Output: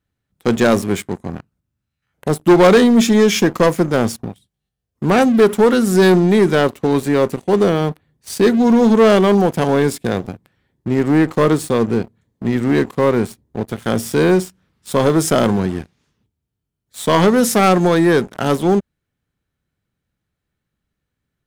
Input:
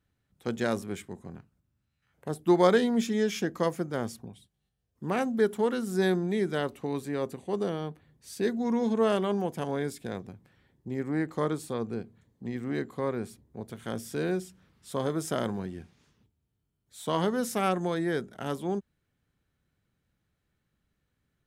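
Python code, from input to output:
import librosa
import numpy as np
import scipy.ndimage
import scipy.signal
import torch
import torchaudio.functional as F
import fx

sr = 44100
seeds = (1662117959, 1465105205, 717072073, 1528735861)

y = fx.leveller(x, sr, passes=3)
y = y * librosa.db_to_amplitude(6.0)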